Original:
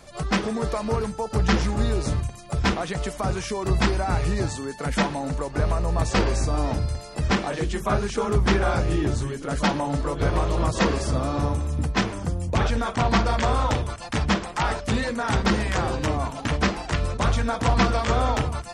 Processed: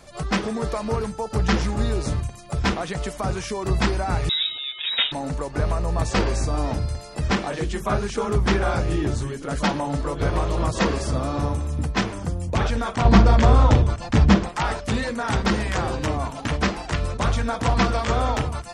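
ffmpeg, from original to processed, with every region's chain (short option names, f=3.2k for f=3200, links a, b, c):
-filter_complex "[0:a]asettb=1/sr,asplit=3[a][b][c];[a]atrim=end=4.294[d];[b]atrim=start=4.29:end=5.12,asetpts=PTS-STARTPTS,afade=t=in:d=0.004:c=qsin,afade=t=out:st=0.826:d=0.004:c=qsin,acompressor=mode=upward:threshold=-27dB:ratio=2.5:attack=3.2:release=140:knee=2.83:detection=peak,lowpass=f=3.3k:t=q:w=0.5098,lowpass=f=3.3k:t=q:w=0.6013,lowpass=f=3.3k:t=q:w=0.9,lowpass=f=3.3k:t=q:w=2.563,afreqshift=-3900[e];[c]atrim=start=5.116[f];[d][e]acrossfade=d=0.004:c1=hsin:c2=qsin[g];[g][f]acrossfade=d=0.004:c1=qsin:c2=hsin,asettb=1/sr,asplit=3[h][i][j];[h]atrim=end=13.054[k];[i]atrim=start=13.05:end=14.49,asetpts=PTS-STARTPTS,afade=t=in:d=0.004:c=qsin,afade=t=out:st=1.436:d=0.004:c=qsin,lowpass=f=8.1k:w=0.5412,lowpass=f=8.1k:w=1.3066,lowshelf=f=470:g=10[l];[j]atrim=start=14.486[m];[k][l]acrossfade=d=0.004:c1=hsin:c2=qsin[n];[n][m]acrossfade=d=0.004:c1=qsin:c2=hsin"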